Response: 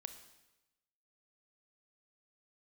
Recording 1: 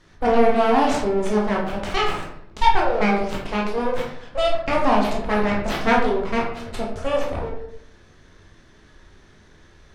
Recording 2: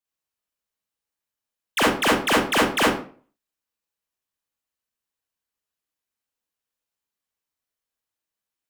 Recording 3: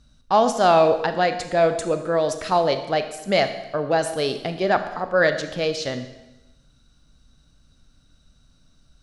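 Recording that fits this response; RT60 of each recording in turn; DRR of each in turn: 3; 0.75 s, 0.45 s, 1.0 s; -3.0 dB, -6.0 dB, 8.5 dB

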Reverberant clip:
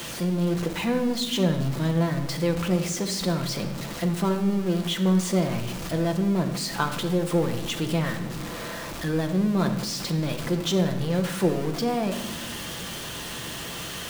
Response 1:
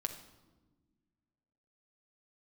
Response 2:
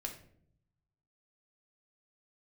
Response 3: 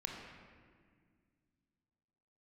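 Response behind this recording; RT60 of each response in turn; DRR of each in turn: 1; no single decay rate, 0.65 s, 1.9 s; 5.0 dB, 1.0 dB, 0.0 dB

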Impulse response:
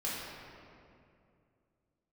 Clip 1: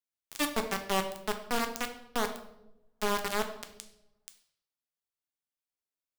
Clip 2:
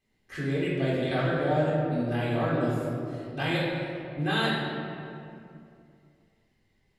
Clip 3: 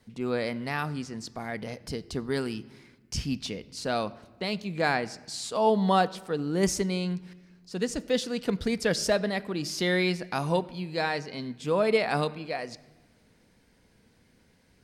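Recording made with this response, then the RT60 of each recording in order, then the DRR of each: 2; 0.90 s, 2.5 s, 1.3 s; 5.5 dB, -7.0 dB, 14.0 dB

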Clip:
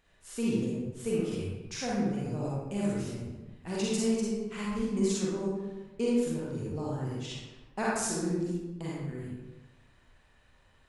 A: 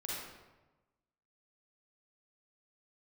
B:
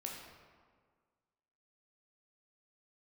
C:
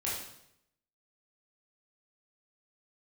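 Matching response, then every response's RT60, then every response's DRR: A; 1.1 s, 1.7 s, 0.75 s; -6.0 dB, -1.5 dB, -7.0 dB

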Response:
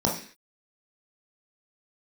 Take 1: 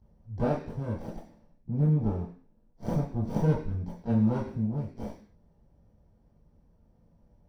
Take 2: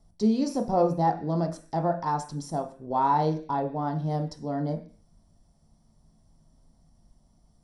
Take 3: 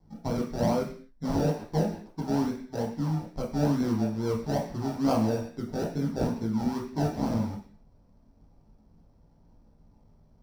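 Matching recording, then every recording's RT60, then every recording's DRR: 3; 0.45 s, 0.45 s, 0.45 s; -12.0 dB, 5.5 dB, -2.5 dB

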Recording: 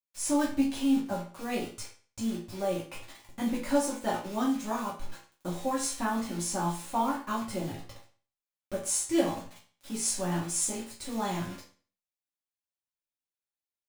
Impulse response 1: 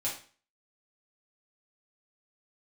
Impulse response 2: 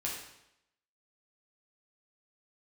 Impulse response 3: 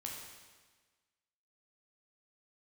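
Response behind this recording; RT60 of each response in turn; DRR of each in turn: 1; 0.40 s, 0.80 s, 1.4 s; -6.5 dB, -4.5 dB, -2.0 dB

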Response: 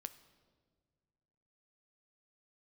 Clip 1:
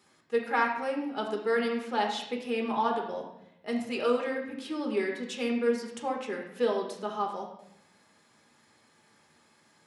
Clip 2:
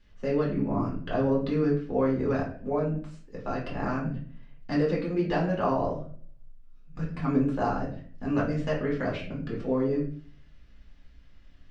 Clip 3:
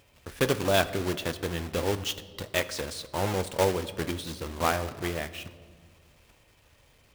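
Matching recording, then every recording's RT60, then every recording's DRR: 3; 0.80 s, 0.45 s, 1.8 s; 0.0 dB, -5.0 dB, 11.0 dB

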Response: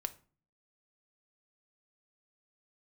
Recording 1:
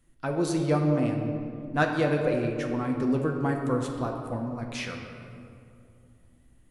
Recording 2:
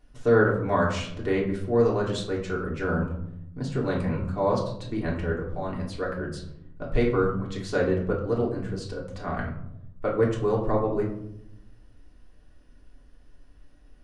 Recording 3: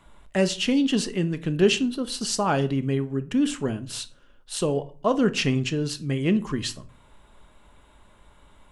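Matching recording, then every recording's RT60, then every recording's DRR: 3; 2.5 s, 0.80 s, 0.40 s; 1.5 dB, -4.5 dB, 10.0 dB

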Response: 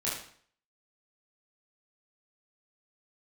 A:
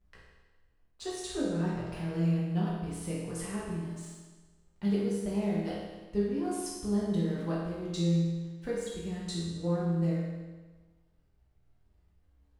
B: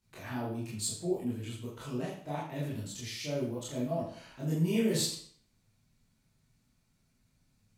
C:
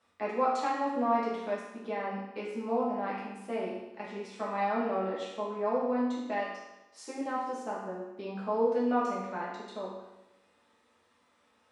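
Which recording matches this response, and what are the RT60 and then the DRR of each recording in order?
B; 1.3 s, 0.55 s, 1.0 s; -7.5 dB, -7.5 dB, -7.0 dB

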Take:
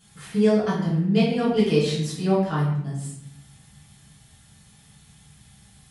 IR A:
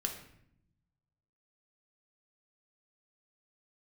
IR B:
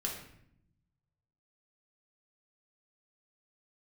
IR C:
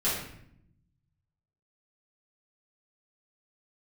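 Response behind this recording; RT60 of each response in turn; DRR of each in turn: C; 0.70 s, 0.70 s, 0.70 s; 2.5 dB, -2.0 dB, -11.0 dB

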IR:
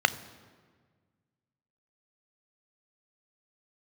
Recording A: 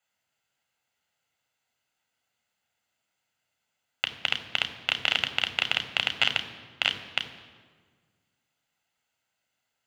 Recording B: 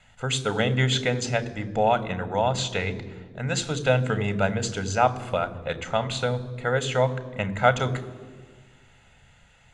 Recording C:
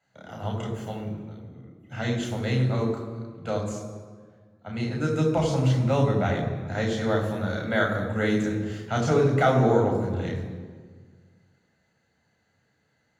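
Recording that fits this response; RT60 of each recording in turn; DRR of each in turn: B; 1.6 s, 1.6 s, 1.6 s; 8.0 dB, 13.5 dB, 1.0 dB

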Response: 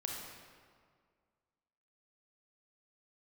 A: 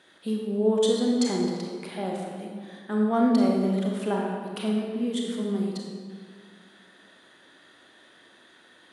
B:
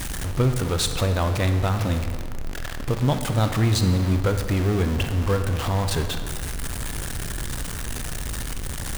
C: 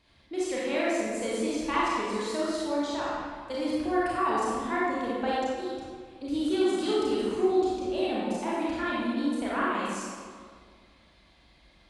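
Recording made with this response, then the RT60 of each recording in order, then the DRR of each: A; 1.9 s, 1.9 s, 2.0 s; -1.0 dB, 7.5 dB, -8.0 dB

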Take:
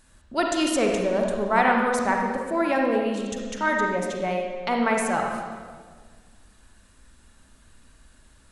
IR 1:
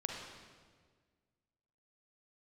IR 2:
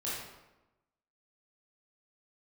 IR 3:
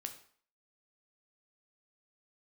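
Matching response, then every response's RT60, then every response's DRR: 1; 1.6 s, 1.0 s, 0.50 s; 0.0 dB, -8.5 dB, 5.5 dB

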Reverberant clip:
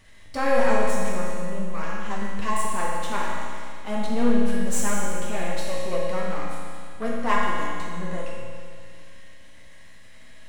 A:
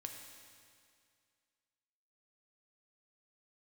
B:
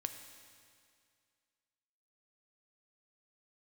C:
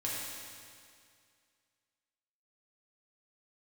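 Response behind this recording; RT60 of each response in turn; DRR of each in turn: C; 2.2 s, 2.2 s, 2.2 s; 2.5 dB, 6.5 dB, -6.5 dB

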